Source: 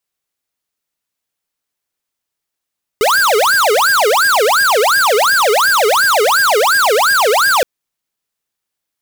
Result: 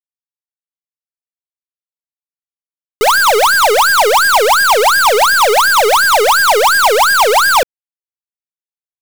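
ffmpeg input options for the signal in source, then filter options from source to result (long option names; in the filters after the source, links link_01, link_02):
-f lavfi -i "aevalsrc='0.266*(2*lt(mod((1020*t-610/(2*PI*2.8)*sin(2*PI*2.8*t)),1),0.5)-1)':duration=4.62:sample_rate=44100"
-filter_complex "[0:a]equalizer=frequency=910:width=4.7:gain=4.5,asplit=2[link_01][link_02];[link_02]asoftclip=type=hard:threshold=-21dB,volume=-3dB[link_03];[link_01][link_03]amix=inputs=2:normalize=0,acrusher=bits=4:dc=4:mix=0:aa=0.000001"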